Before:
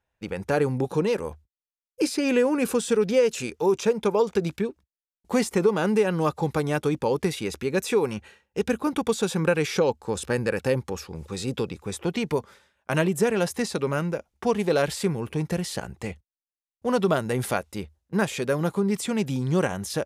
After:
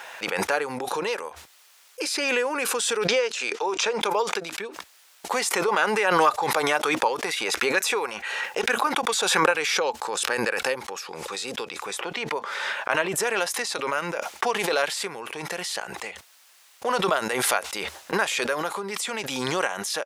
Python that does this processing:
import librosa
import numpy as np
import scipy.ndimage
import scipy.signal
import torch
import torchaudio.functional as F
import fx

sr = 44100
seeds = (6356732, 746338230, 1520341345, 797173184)

y = fx.bandpass_edges(x, sr, low_hz=230.0, high_hz=6600.0, at=(3.08, 4.01))
y = fx.bell_lfo(y, sr, hz=4.5, low_hz=600.0, high_hz=2100.0, db=7, at=(5.68, 9.51))
y = fx.high_shelf(y, sr, hz=4800.0, db=-11.0, at=(12.0, 13.16))
y = scipy.signal.sosfilt(scipy.signal.butter(2, 820.0, 'highpass', fs=sr, output='sos'), y)
y = fx.high_shelf(y, sr, hz=10000.0, db=-8.0)
y = fx.pre_swell(y, sr, db_per_s=23.0)
y = y * 10.0 ** (4.5 / 20.0)